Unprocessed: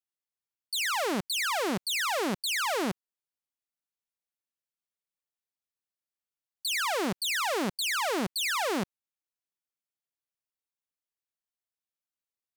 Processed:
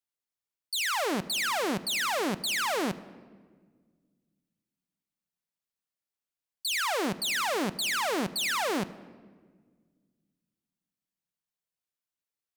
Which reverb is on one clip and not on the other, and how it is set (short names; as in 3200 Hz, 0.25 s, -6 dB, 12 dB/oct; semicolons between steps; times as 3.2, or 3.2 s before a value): shoebox room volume 1900 m³, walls mixed, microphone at 0.37 m